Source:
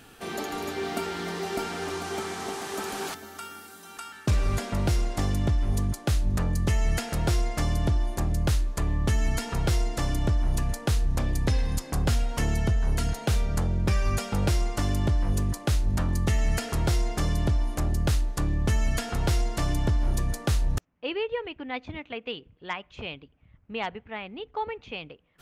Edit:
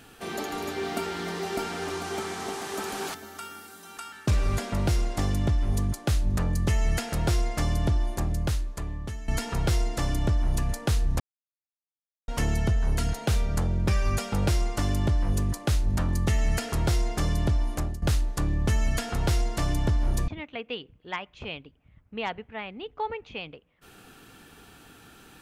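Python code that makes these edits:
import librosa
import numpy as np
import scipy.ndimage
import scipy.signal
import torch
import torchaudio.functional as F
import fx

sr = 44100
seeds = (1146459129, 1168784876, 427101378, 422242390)

y = fx.edit(x, sr, fx.fade_out_to(start_s=8.1, length_s=1.18, floor_db=-16.0),
    fx.silence(start_s=11.2, length_s=1.08),
    fx.fade_out_to(start_s=17.76, length_s=0.26, floor_db=-16.5),
    fx.cut(start_s=20.28, length_s=1.57), tone=tone)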